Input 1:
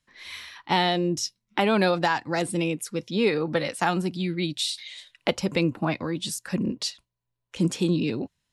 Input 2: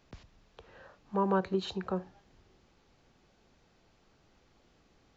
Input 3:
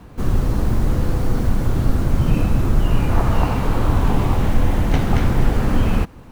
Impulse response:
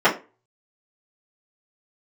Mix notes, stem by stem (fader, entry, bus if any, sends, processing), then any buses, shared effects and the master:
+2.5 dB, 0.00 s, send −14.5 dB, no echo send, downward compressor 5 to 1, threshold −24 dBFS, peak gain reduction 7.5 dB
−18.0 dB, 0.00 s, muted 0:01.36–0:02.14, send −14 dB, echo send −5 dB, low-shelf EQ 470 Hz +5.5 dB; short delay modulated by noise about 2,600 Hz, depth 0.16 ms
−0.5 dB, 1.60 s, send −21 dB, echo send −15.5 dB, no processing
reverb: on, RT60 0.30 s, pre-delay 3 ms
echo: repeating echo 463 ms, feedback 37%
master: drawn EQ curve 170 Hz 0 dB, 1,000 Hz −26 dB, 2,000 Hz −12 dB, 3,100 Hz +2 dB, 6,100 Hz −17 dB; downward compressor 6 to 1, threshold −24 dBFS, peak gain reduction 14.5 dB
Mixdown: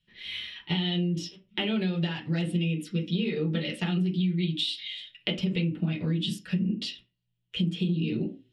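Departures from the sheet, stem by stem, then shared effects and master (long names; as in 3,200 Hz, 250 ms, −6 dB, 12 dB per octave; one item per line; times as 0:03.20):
stem 2 −18.0 dB → −27.0 dB
stem 3: muted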